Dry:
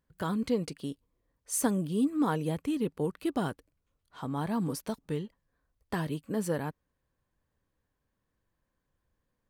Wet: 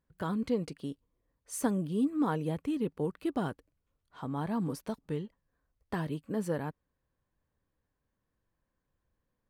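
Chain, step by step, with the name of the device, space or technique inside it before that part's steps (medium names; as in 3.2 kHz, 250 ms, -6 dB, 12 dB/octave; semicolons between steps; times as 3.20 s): behind a face mask (treble shelf 3.4 kHz -7 dB); trim -1.5 dB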